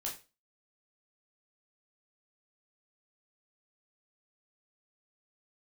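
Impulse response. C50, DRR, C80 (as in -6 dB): 9.0 dB, -3.0 dB, 15.0 dB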